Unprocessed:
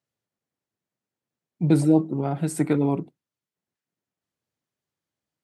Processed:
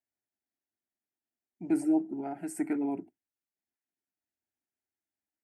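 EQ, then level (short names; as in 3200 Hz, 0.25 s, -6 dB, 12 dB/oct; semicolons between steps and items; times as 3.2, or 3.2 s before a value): fixed phaser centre 750 Hz, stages 8; -7.0 dB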